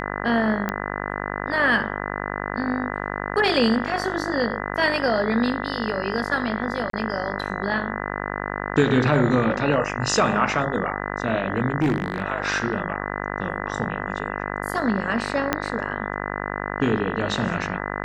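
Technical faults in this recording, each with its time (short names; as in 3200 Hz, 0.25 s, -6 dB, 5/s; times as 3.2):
buzz 50 Hz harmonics 40 -29 dBFS
0.69 pop -12 dBFS
6.9–6.93 gap 33 ms
11.8–12.22 clipped -16 dBFS
15.53 pop -5 dBFS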